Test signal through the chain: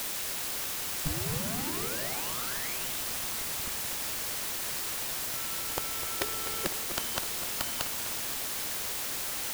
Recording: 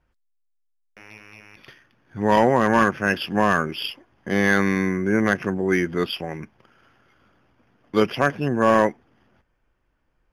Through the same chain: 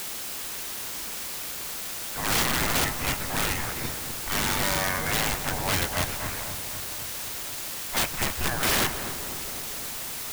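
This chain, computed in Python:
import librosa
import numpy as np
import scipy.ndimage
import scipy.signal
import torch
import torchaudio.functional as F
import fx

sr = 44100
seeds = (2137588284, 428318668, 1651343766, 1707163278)

p1 = fx.law_mismatch(x, sr, coded='A')
p2 = fx.spec_gate(p1, sr, threshold_db=-20, keep='weak')
p3 = fx.bass_treble(p2, sr, bass_db=13, treble_db=-14)
p4 = fx.quant_dither(p3, sr, seeds[0], bits=6, dither='triangular')
p5 = p3 + F.gain(torch.from_numpy(p4), -5.5).numpy()
p6 = (np.mod(10.0 ** (25.5 / 20.0) * p5 + 1.0, 2.0) - 1.0) / 10.0 ** (25.5 / 20.0)
p7 = p6 + fx.echo_filtered(p6, sr, ms=253, feedback_pct=68, hz=1700.0, wet_db=-9.0, dry=0)
y = F.gain(torch.from_numpy(p7), 7.0).numpy()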